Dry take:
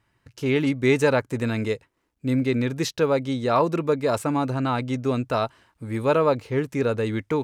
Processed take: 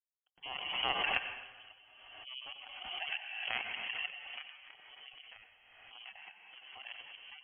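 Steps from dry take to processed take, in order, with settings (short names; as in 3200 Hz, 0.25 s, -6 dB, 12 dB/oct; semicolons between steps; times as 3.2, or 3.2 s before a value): echo with dull and thin repeats by turns 0.117 s, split 900 Hz, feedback 68%, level -3.5 dB; power-law curve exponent 3; inverted band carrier 3200 Hz; 4.57–6.9 compressor 8:1, threshold -43 dBFS, peak gain reduction 19 dB; reverb removal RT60 1.7 s; spectral gate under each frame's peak -25 dB strong; bell 760 Hz +13.5 dB 0.25 oct; plate-style reverb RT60 1.2 s, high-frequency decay 0.9×, pre-delay 80 ms, DRR 5.5 dB; backwards sustainer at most 36 dB/s; gain -6.5 dB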